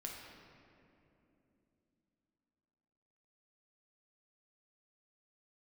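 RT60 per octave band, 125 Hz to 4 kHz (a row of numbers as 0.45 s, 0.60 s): 3.8 s, 4.4 s, 3.4 s, 2.5 s, 2.2 s, 1.5 s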